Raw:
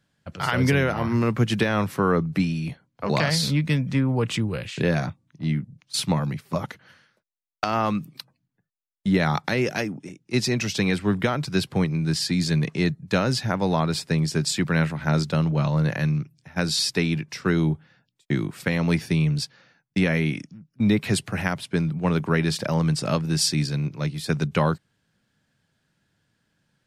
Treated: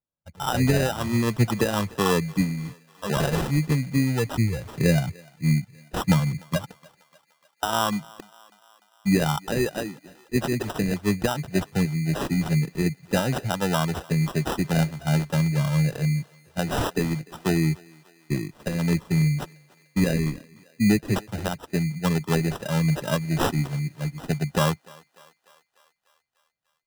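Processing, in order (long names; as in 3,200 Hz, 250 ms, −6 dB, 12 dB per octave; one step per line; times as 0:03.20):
spectral dynamics exaggerated over time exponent 1.5
0:04.38–0:06.57: low-shelf EQ 200 Hz +8 dB
decimation without filtering 20×
feedback echo with a high-pass in the loop 297 ms, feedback 63%, high-pass 420 Hz, level −22.5 dB
level +2 dB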